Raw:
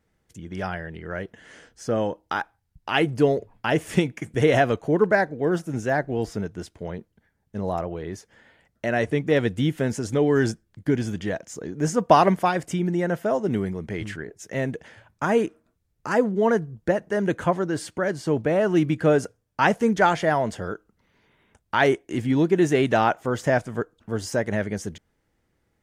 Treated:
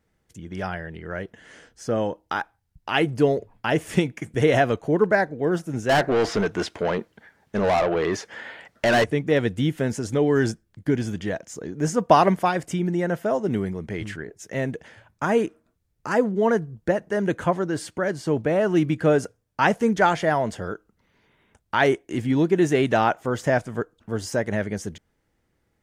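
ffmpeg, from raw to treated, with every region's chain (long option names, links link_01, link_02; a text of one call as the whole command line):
ffmpeg -i in.wav -filter_complex "[0:a]asettb=1/sr,asplit=3[link_01][link_02][link_03];[link_01]atrim=end=5.894[link_04];[link_02]atrim=start=5.89:end=9.04,asetpts=PTS-STARTPTS,afade=type=in:duration=0.004:curve=qsin,afade=type=out:start_time=3.146:duration=0.004:curve=qsin,acrossover=split=6100[link_05][link_06];[link_06]acompressor=threshold=-55dB:ratio=4:attack=1:release=60[link_07];[link_05][link_07]amix=inputs=2:normalize=0,highshelf=frequency=5400:gain=-7,asplit=2[link_08][link_09];[link_09]highpass=frequency=720:poles=1,volume=25dB,asoftclip=type=tanh:threshold=-12dB[link_10];[link_08][link_10]amix=inputs=2:normalize=0,lowpass=frequency=6500:poles=1,volume=-6dB[link_11];[link_03]atrim=start=9.036[link_12];[link_04][link_11]acrossfade=duration=0.004:curve1=hsin:curve2=qsin[link_13];[link_13][link_12]acrossfade=duration=0.004:curve1=qsin:curve2=hsin" out.wav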